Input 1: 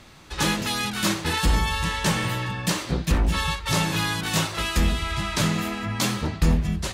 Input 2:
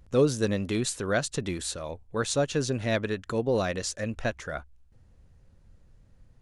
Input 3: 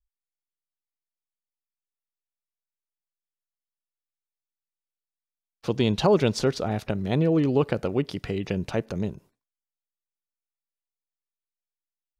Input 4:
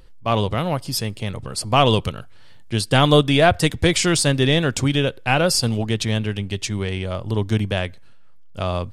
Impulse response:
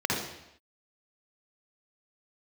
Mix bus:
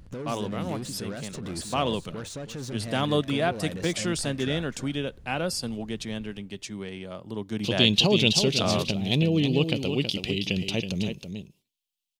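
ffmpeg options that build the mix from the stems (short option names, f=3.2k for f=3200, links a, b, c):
-filter_complex "[1:a]acompressor=threshold=-32dB:ratio=3,alimiter=level_in=7dB:limit=-24dB:level=0:latency=1:release=55,volume=-7dB,aeval=exprs='0.0282*(cos(1*acos(clip(val(0)/0.0282,-1,1)))-cos(1*PI/2))+0.00447*(cos(5*acos(clip(val(0)/0.0282,-1,1)))-cos(5*PI/2))':c=same,volume=-0.5dB,asplit=2[a][b];[b]volume=-12dB[c];[2:a]highshelf=f=2.1k:t=q:w=3:g=12,adelay=2000,volume=-5.5dB,asplit=2[d][e];[e]volume=-7.5dB[f];[3:a]highpass=200,volume=-3.5dB,afade=t=in:st=7.54:d=0.33:silence=0.398107[g];[c][f]amix=inputs=2:normalize=0,aecho=0:1:324:1[h];[a][d][g][h]amix=inputs=4:normalize=0,equalizer=f=180:t=o:w=1.6:g=6.5"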